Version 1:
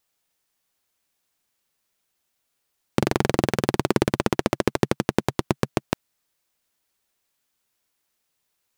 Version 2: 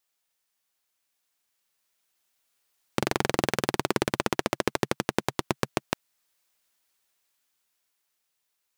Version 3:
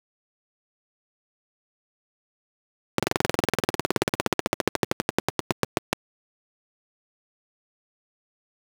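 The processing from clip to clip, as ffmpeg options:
ffmpeg -i in.wav -af "lowshelf=frequency=500:gain=-8.5,alimiter=limit=-6.5dB:level=0:latency=1:release=488,dynaudnorm=framelen=350:gausssize=11:maxgain=11.5dB,volume=-3dB" out.wav
ffmpeg -i in.wav -af "aeval=exprs='val(0)*gte(abs(val(0)),0.0133)':channel_layout=same" out.wav

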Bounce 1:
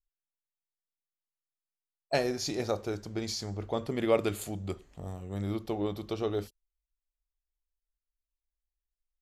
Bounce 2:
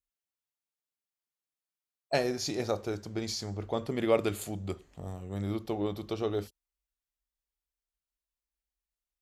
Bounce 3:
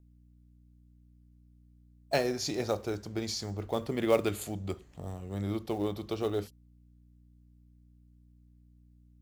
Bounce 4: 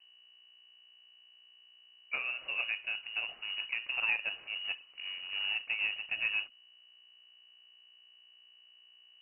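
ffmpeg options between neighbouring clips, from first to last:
ffmpeg -i in.wav -af "highpass=45" out.wav
ffmpeg -i in.wav -filter_complex "[0:a]aeval=exprs='val(0)+0.00126*(sin(2*PI*60*n/s)+sin(2*PI*2*60*n/s)/2+sin(2*PI*3*60*n/s)/3+sin(2*PI*4*60*n/s)/4+sin(2*PI*5*60*n/s)/5)':channel_layout=same,acrossover=split=520|3700[link_01][link_02][link_03];[link_02]acrusher=bits=4:mode=log:mix=0:aa=0.000001[link_04];[link_01][link_04][link_03]amix=inputs=3:normalize=0" out.wav
ffmpeg -i in.wav -af "acrusher=bits=3:mode=log:mix=0:aa=0.000001,alimiter=limit=-20.5dB:level=0:latency=1:release=300,lowpass=frequency=2600:width_type=q:width=0.5098,lowpass=frequency=2600:width_type=q:width=0.6013,lowpass=frequency=2600:width_type=q:width=0.9,lowpass=frequency=2600:width_type=q:width=2.563,afreqshift=-3000,volume=-2dB" out.wav

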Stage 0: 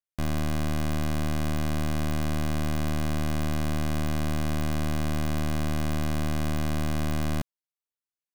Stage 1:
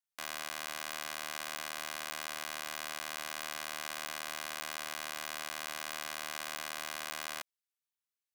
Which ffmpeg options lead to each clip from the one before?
ffmpeg -i in.wav -af "highpass=1200" out.wav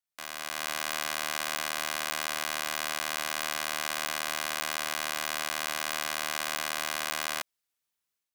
ffmpeg -i in.wav -af "dynaudnorm=framelen=340:gausssize=3:maxgain=8dB" out.wav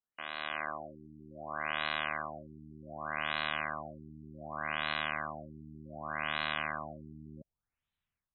ffmpeg -i in.wav -af "asubboost=boost=6.5:cutoff=140,afftfilt=real='re*lt(b*sr/1024,370*pow(4200/370,0.5+0.5*sin(2*PI*0.66*pts/sr)))':imag='im*lt(b*sr/1024,370*pow(4200/370,0.5+0.5*sin(2*PI*0.66*pts/sr)))':win_size=1024:overlap=0.75" out.wav

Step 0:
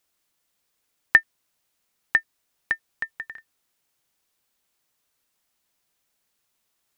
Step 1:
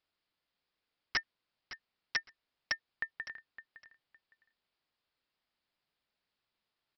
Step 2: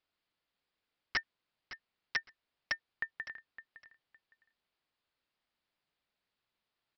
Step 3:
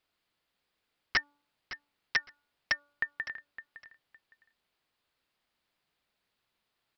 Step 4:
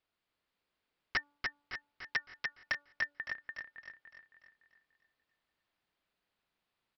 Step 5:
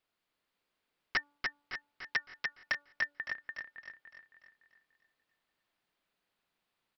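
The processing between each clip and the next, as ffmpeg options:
ffmpeg -i in.wav -af "aresample=11025,aeval=exprs='(mod(6.31*val(0)+1,2)-1)/6.31':channel_layout=same,aresample=44100,aecho=1:1:561|1122:0.188|0.0396,volume=-7dB" out.wav
ffmpeg -i in.wav -af "lowpass=5000" out.wav
ffmpeg -i in.wav -af "bandreject=frequency=288.9:width_type=h:width=4,bandreject=frequency=577.8:width_type=h:width=4,bandreject=frequency=866.7:width_type=h:width=4,bandreject=frequency=1155.6:width_type=h:width=4,bandreject=frequency=1444.5:width_type=h:width=4,volume=5.5dB" out.wav
ffmpeg -i in.wav -filter_complex "[0:a]highshelf=frequency=5200:gain=-9.5,asplit=2[link_01][link_02];[link_02]aecho=0:1:292|584|876|1168|1460|1752:0.668|0.307|0.141|0.0651|0.0299|0.0138[link_03];[link_01][link_03]amix=inputs=2:normalize=0,volume=-4dB" out.wav
ffmpeg -i in.wav -af "equalizer=frequency=63:width=1.1:gain=-7,volume=1.5dB" out.wav

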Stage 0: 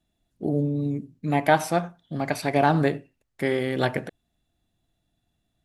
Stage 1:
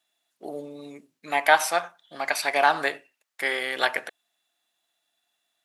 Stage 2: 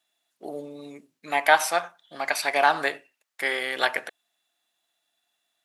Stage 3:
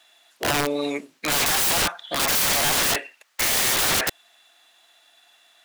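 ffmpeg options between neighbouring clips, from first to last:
ffmpeg -i in.wav -af "highpass=980,volume=6.5dB" out.wav
ffmpeg -i in.wav -af anull out.wav
ffmpeg -i in.wav -filter_complex "[0:a]asplit=2[link_01][link_02];[link_02]highpass=frequency=720:poles=1,volume=28dB,asoftclip=type=tanh:threshold=-2.5dB[link_03];[link_01][link_03]amix=inputs=2:normalize=0,lowpass=frequency=4100:poles=1,volume=-6dB,aeval=exprs='(mod(6.31*val(0)+1,2)-1)/6.31':channel_layout=same" out.wav

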